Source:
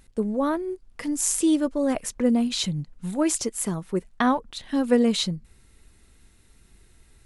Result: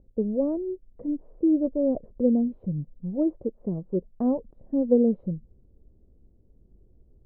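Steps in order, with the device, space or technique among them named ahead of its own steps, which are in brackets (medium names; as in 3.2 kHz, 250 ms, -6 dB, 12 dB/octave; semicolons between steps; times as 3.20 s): under water (low-pass 550 Hz 24 dB/octave; peaking EQ 550 Hz +5.5 dB 0.37 oct); trim -1 dB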